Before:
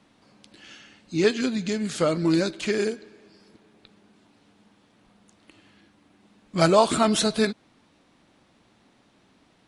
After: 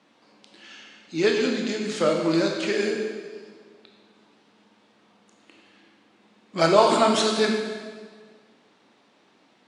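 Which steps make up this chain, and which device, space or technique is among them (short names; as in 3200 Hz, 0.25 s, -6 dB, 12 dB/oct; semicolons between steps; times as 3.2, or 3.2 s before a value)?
supermarket ceiling speaker (BPF 260–6700 Hz; reverb RT60 1.6 s, pre-delay 19 ms, DRR 1 dB)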